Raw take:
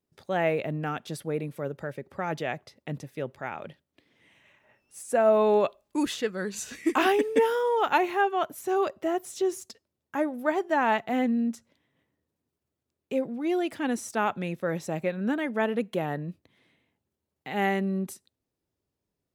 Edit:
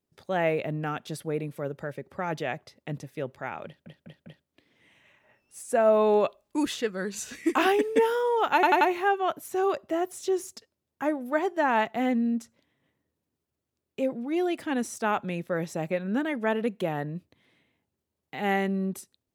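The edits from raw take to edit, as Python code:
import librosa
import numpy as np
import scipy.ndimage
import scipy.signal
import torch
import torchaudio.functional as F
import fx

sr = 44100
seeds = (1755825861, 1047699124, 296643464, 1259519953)

y = fx.edit(x, sr, fx.stutter(start_s=3.66, slice_s=0.2, count=4),
    fx.stutter(start_s=7.94, slice_s=0.09, count=4), tone=tone)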